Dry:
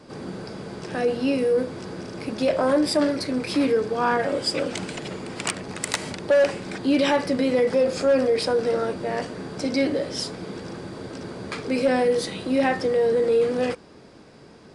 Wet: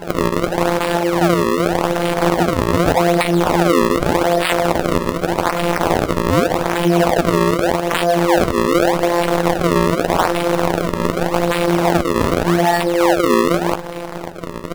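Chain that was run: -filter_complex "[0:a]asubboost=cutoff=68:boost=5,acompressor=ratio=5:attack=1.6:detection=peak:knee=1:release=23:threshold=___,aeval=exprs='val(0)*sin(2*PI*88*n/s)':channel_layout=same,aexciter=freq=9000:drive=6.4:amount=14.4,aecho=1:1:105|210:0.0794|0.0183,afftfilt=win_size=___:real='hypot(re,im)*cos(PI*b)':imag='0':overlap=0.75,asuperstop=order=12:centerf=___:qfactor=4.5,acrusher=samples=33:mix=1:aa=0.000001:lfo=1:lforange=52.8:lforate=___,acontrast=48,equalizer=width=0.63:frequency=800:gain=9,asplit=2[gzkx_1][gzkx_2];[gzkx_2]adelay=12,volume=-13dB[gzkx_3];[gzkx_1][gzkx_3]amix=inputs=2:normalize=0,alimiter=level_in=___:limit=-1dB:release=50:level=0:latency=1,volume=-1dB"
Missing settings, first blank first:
-34dB, 1024, 4500, 0.84, 16.5dB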